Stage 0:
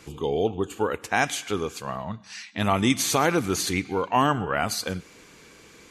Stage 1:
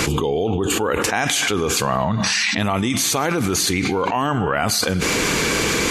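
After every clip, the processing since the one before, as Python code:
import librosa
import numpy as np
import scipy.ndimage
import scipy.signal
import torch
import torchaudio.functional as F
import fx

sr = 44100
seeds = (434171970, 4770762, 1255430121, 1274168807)

y = fx.env_flatten(x, sr, amount_pct=100)
y = y * librosa.db_to_amplitude(-2.0)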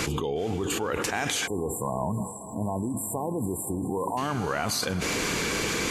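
y = fx.echo_diffused(x, sr, ms=487, feedback_pct=55, wet_db=-14.0)
y = fx.spec_erase(y, sr, start_s=1.47, length_s=2.7, low_hz=1100.0, high_hz=7200.0)
y = y * librosa.db_to_amplitude(-8.5)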